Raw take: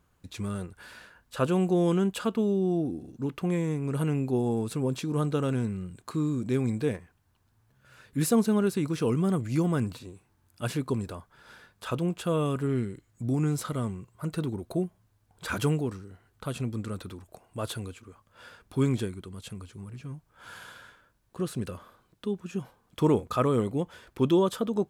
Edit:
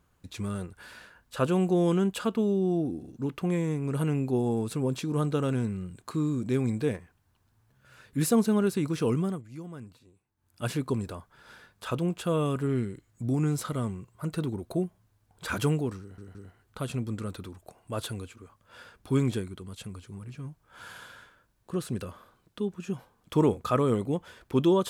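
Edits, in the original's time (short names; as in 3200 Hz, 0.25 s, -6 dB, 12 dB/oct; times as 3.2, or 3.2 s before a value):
9.15–10.63 dip -15.5 dB, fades 0.28 s
16.01 stutter 0.17 s, 3 plays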